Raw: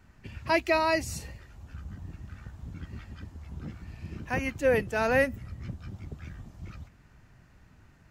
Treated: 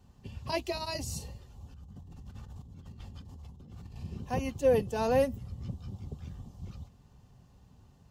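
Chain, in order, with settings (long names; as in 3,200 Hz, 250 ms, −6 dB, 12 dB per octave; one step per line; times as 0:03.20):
flat-topped bell 1,800 Hz −13 dB 1.1 octaves
notch comb filter 320 Hz
0:01.74–0:04.03: compressor whose output falls as the input rises −47 dBFS, ratio −1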